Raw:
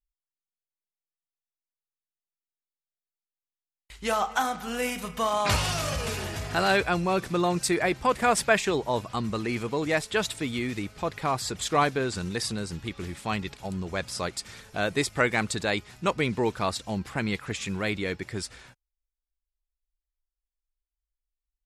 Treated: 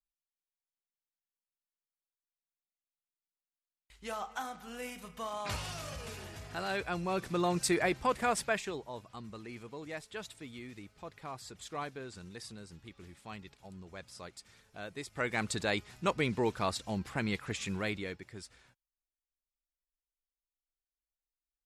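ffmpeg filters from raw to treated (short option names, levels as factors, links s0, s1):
-af "volume=2.37,afade=t=in:st=6.7:d=1.02:silence=0.354813,afade=t=out:st=7.72:d=1.18:silence=0.237137,afade=t=in:st=15.05:d=0.49:silence=0.266073,afade=t=out:st=17.76:d=0.48:silence=0.354813"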